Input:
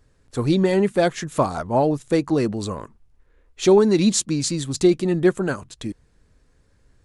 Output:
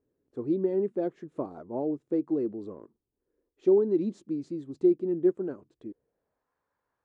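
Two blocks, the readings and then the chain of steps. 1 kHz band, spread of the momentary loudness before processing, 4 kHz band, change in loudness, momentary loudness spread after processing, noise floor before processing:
−19.0 dB, 14 LU, below −30 dB, −8.5 dB, 19 LU, −61 dBFS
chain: band-pass filter sweep 350 Hz → 970 Hz, 0:05.81–0:06.49
level −5.5 dB

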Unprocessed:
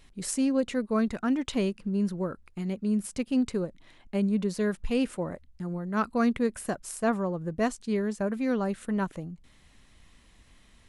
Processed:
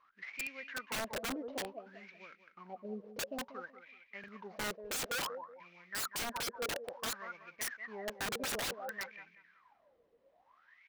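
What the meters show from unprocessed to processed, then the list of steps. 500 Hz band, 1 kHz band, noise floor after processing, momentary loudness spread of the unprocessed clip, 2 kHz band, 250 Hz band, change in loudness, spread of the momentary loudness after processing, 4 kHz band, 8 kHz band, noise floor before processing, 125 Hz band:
−13.0 dB, −7.5 dB, −71 dBFS, 9 LU, −1.0 dB, −22.5 dB, −10.5 dB, 16 LU, +2.0 dB, −2.0 dB, −59 dBFS, −21.0 dB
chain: variable-slope delta modulation 32 kbit/s
LFO wah 0.57 Hz 460–2,400 Hz, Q 21
on a send: repeating echo 188 ms, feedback 30%, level −12.5 dB
on the sum: wrap-around overflow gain 45.5 dB
buffer that repeats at 0:04.19, samples 2,048, times 1
level +13.5 dB

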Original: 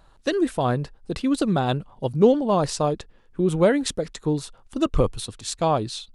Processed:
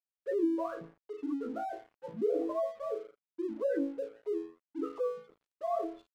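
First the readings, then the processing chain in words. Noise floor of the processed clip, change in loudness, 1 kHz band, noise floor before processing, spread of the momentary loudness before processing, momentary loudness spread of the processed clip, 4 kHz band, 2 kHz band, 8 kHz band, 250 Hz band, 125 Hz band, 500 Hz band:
below −85 dBFS, −12.0 dB, −13.5 dB, −55 dBFS, 11 LU, 13 LU, below −30 dB, −17.5 dB, below −30 dB, −12.5 dB, −33.5 dB, −10.5 dB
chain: three sine waves on the formant tracks
high-frequency loss of the air 450 metres
resonators tuned to a chord A2 major, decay 0.5 s
in parallel at +2.5 dB: compressor whose output falls as the input rises −38 dBFS, ratio −1
on the sum: gate on every frequency bin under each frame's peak −20 dB strong
dead-zone distortion −56 dBFS

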